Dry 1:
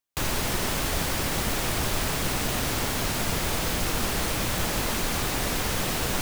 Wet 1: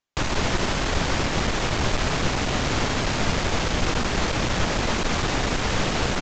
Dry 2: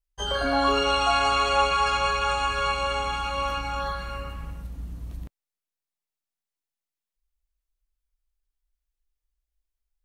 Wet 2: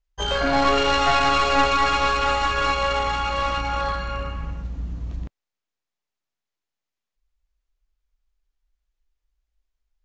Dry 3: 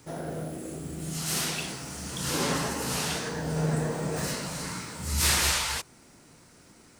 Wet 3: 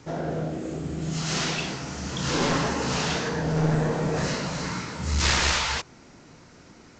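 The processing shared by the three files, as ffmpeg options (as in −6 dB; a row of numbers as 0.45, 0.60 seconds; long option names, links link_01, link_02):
-af "highshelf=frequency=5100:gain=-7,aresample=16000,aeval=exprs='clip(val(0),-1,0.0376)':channel_layout=same,aresample=44100,volume=6dB"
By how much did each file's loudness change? +2.0, +3.0, +2.5 LU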